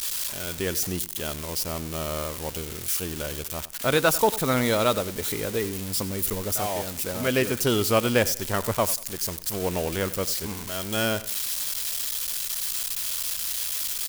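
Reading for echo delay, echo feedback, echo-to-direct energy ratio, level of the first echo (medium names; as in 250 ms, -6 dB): 94 ms, 32%, -16.5 dB, -17.0 dB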